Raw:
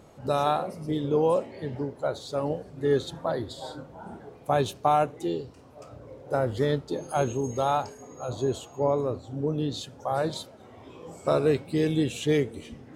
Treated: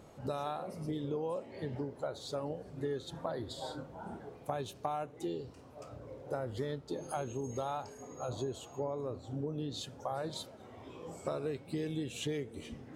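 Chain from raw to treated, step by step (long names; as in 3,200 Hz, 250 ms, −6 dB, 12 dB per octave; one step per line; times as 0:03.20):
downward compressor 6 to 1, threshold −31 dBFS, peak gain reduction 12.5 dB
level −3 dB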